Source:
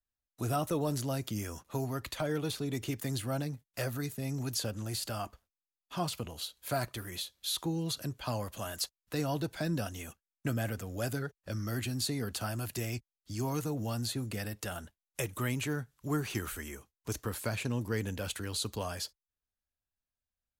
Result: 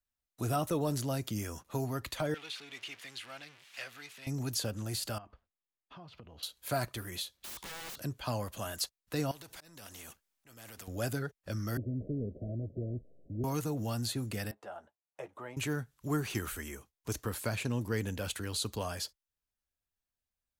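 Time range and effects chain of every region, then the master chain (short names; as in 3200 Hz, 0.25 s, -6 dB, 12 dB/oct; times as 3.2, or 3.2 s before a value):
2.34–4.27 zero-crossing step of -37.5 dBFS + band-pass 2600 Hz, Q 1.5
5.18–6.43 air absorption 270 m + compressor 4:1, threshold -50 dBFS
7.37–8.02 high shelf 8800 Hz -7.5 dB + wrapped overs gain 39 dB
9.31–10.88 compressor, threshold -38 dBFS + auto swell 0.23 s + spectral compressor 2:1
11.77–13.44 delta modulation 16 kbps, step -49 dBFS + steep low-pass 650 Hz 96 dB/oct
14.51–15.57 band-pass 740 Hz, Q 1.9 + doubler 14 ms -10 dB
whole clip: dry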